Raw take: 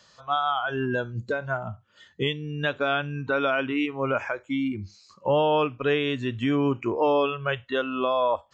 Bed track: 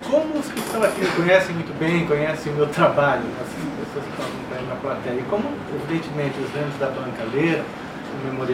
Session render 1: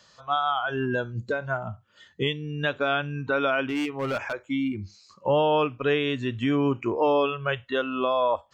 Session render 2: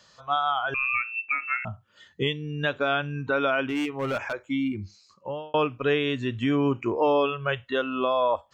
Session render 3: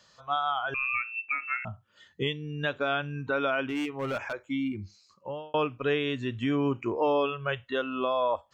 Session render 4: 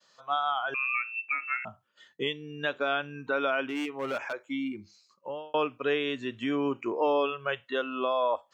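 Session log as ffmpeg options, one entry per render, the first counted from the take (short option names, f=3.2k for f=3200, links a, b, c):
-filter_complex "[0:a]asettb=1/sr,asplit=3[a][b][c];[a]atrim=end=3.684[d];[b]atrim=start=3.68:end=4.33,asetpts=PTS-STARTPTS,afade=t=in:d=0.004:c=qsin,afade=t=out:st=0.646:d=0.004:c=qsin,asoftclip=type=hard:threshold=-24dB[e];[c]atrim=start=4.326[f];[d][e]acrossfade=d=0.004:c1=hsin:c2=qsin[g];[g][f]acrossfade=d=0.004:c1=qsin:c2=hsin"
-filter_complex "[0:a]asettb=1/sr,asplit=3[a][b][c];[a]atrim=end=0.744[d];[b]atrim=start=0.74:end=1.65,asetpts=PTS-STARTPTS,afade=t=in:d=0.004:c=qsin,afade=t=out:st=0.906:d=0.004:c=qsin,lowpass=f=2.4k:t=q:w=0.5098,lowpass=f=2.4k:t=q:w=0.6013,lowpass=f=2.4k:t=q:w=0.9,lowpass=f=2.4k:t=q:w=2.563,afreqshift=-2800[e];[c]atrim=start=1.646[f];[d][e]acrossfade=d=0.004:c1=hsin:c2=qsin[g];[g][f]acrossfade=d=0.004:c1=qsin:c2=hsin,asettb=1/sr,asplit=3[h][i][j];[h]atrim=end=3.124[k];[i]atrim=start=3.12:end=4.23,asetpts=PTS-STARTPTS,afade=t=in:d=0.004:c=qsin,afade=t=out:st=1.106:d=0.004:c=qsin,equalizer=f=4.7k:w=5.8:g=-5[l];[j]atrim=start=4.226[m];[k][l]acrossfade=d=0.004:c1=hsin:c2=qsin[n];[n][m]acrossfade=d=0.004:c1=qsin:c2=hsin,asplit=2[o][p];[o]atrim=end=5.54,asetpts=PTS-STARTPTS,afade=t=out:st=4.81:d=0.73[q];[p]atrim=start=5.54,asetpts=PTS-STARTPTS,afade=t=in:d=0.004:c=hsin[r];[q][r]concat=n=2:v=0:a=1"
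-af "volume=-3.5dB"
-af "highpass=250,agate=range=-33dB:threshold=-58dB:ratio=3:detection=peak"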